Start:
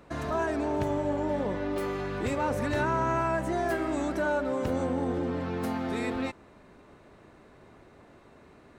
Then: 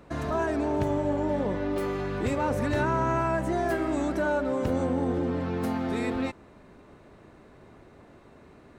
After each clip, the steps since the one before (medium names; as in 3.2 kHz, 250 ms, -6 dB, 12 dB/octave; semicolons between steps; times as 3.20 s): bass shelf 490 Hz +3.5 dB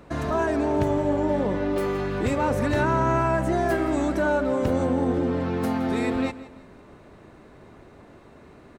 feedback delay 168 ms, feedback 36%, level -17 dB; trim +3.5 dB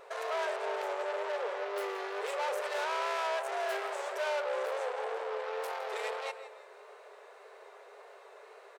wow and flutter 37 cents; saturation -29.5 dBFS, distortion -7 dB; brick-wall FIR high-pass 390 Hz